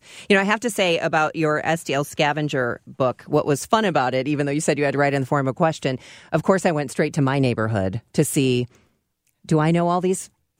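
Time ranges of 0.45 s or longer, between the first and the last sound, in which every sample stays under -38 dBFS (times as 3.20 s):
8.66–9.45 s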